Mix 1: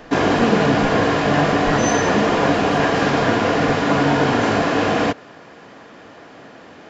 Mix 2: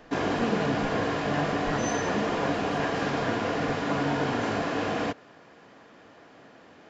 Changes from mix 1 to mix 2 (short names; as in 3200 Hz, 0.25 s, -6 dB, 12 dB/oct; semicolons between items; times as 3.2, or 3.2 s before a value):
speech -10.0 dB; background -10.5 dB